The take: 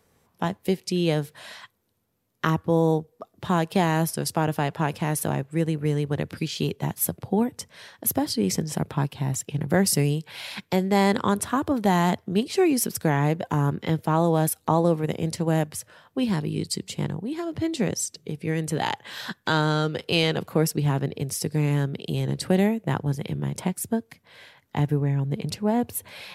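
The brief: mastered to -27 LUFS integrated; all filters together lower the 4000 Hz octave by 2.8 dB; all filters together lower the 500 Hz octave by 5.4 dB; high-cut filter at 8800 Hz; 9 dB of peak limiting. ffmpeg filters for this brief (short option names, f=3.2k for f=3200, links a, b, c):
-af "lowpass=8.8k,equalizer=f=500:t=o:g=-7,equalizer=f=4k:t=o:g=-3.5,volume=2dB,alimiter=limit=-14.5dB:level=0:latency=1"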